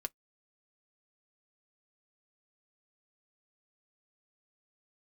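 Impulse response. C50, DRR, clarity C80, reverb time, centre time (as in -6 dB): 39.5 dB, 7.5 dB, 60.0 dB, no single decay rate, 2 ms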